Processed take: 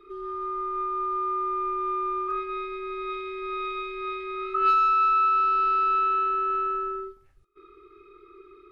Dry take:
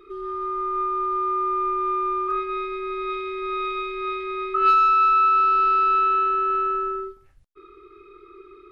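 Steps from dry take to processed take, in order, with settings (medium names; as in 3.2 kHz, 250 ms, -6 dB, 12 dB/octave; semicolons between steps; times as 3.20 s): pre-echo 204 ms -24 dB; trim -4 dB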